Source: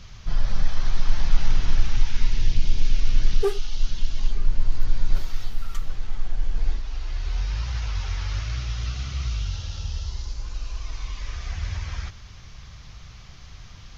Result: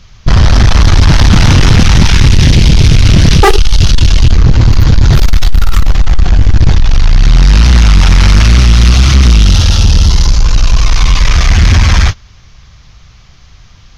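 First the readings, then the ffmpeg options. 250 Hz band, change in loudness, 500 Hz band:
+28.5 dB, +22.5 dB, +16.5 dB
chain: -af "aeval=exprs='0.631*sin(PI/2*7.94*val(0)/0.631)':c=same,agate=range=-25dB:threshold=-12dB:ratio=16:detection=peak,acontrast=84,volume=1dB"

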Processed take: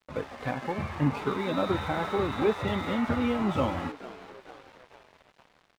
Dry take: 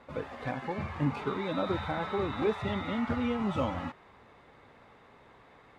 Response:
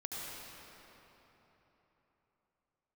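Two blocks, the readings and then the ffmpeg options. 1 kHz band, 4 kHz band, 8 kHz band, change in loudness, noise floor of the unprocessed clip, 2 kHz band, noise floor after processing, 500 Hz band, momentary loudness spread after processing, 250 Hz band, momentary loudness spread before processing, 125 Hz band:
+3.5 dB, +3.5 dB, n/a, +3.5 dB, -58 dBFS, +3.5 dB, -66 dBFS, +3.5 dB, 15 LU, +3.5 dB, 7 LU, +3.0 dB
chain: -filter_complex "[0:a]asplit=8[a][b][c][d][e][f][g][h];[b]adelay=450,afreqshift=100,volume=-15.5dB[i];[c]adelay=900,afreqshift=200,volume=-19.5dB[j];[d]adelay=1350,afreqshift=300,volume=-23.5dB[k];[e]adelay=1800,afreqshift=400,volume=-27.5dB[l];[f]adelay=2250,afreqshift=500,volume=-31.6dB[m];[g]adelay=2700,afreqshift=600,volume=-35.6dB[n];[h]adelay=3150,afreqshift=700,volume=-39.6dB[o];[a][i][j][k][l][m][n][o]amix=inputs=8:normalize=0,aeval=exprs='sgn(val(0))*max(abs(val(0))-0.00299,0)':c=same,volume=4dB"

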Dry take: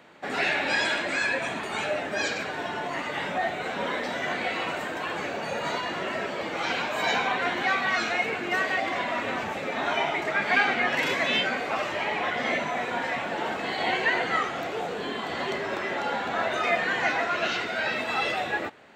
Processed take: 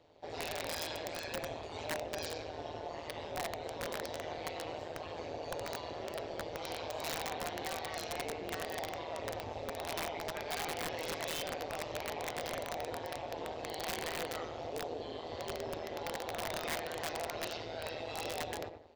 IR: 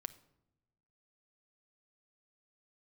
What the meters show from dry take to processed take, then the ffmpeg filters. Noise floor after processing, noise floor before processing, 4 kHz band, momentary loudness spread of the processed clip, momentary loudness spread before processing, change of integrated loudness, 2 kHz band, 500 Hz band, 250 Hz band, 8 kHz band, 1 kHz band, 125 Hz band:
-45 dBFS, -33 dBFS, -11.0 dB, 5 LU, 7 LU, -13.0 dB, -18.5 dB, -9.0 dB, -12.0 dB, -2.5 dB, -13.0 dB, -5.5 dB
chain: -filter_complex "[0:a]firequalizer=gain_entry='entry(110,0);entry(180,-27);entry(300,-15);entry(500,-7);entry(1400,-26);entry(3500,-14);entry(5100,-9);entry(8900,-26)':delay=0.05:min_phase=1,asplit=2[a][b];[b]adelay=91,lowpass=f=2.6k:p=1,volume=-8dB,asplit=2[c][d];[d]adelay=91,lowpass=f=2.6k:p=1,volume=0.36,asplit=2[e][f];[f]adelay=91,lowpass=f=2.6k:p=1,volume=0.36,asplit=2[g][h];[h]adelay=91,lowpass=f=2.6k:p=1,volume=0.36[i];[c][e][g][i]amix=inputs=4:normalize=0[j];[a][j]amix=inputs=2:normalize=0,asoftclip=type=tanh:threshold=-28dB,tremolo=f=160:d=0.857,aeval=exprs='(mod(56.2*val(0)+1,2)-1)/56.2':c=same,volume=5.5dB"

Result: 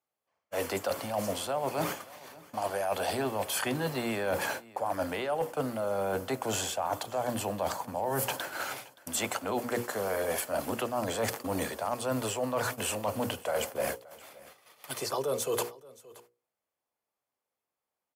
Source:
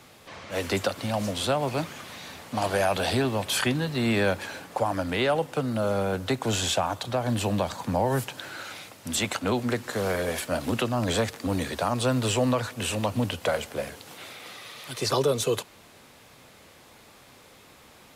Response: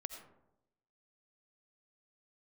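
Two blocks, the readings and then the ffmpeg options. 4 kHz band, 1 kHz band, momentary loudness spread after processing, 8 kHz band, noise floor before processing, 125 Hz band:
-7.5 dB, -3.0 dB, 7 LU, -2.5 dB, -53 dBFS, -11.0 dB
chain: -filter_complex "[0:a]aemphasis=mode=production:type=50fm,bandreject=f=3.8k:w=9.6,agate=range=-46dB:threshold=-35dB:ratio=16:detection=peak,equalizer=f=740:w=0.5:g=12,bandreject=f=60:t=h:w=6,bandreject=f=120:t=h:w=6,bandreject=f=180:t=h:w=6,bandreject=f=240:t=h:w=6,bandreject=f=300:t=h:w=6,bandreject=f=360:t=h:w=6,bandreject=f=420:t=h:w=6,bandreject=f=480:t=h:w=6,bandreject=f=540:t=h:w=6,areverse,acompressor=threshold=-28dB:ratio=12,areverse,asoftclip=type=hard:threshold=-21.5dB,asplit=2[a][b];[b]aecho=0:1:574:0.0841[c];[a][c]amix=inputs=2:normalize=0"

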